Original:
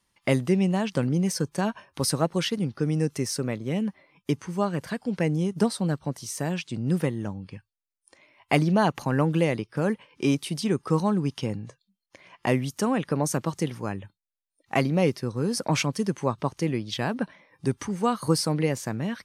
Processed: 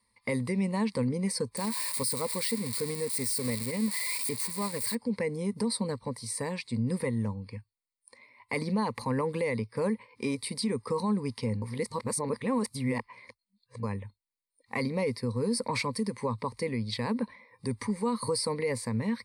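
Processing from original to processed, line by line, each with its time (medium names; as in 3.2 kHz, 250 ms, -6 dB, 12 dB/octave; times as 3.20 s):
1.57–4.95 s: zero-crossing glitches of -16.5 dBFS
11.62–13.83 s: reverse
whole clip: rippled EQ curve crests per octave 0.94, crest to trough 16 dB; peak limiter -16.5 dBFS; trim -4.5 dB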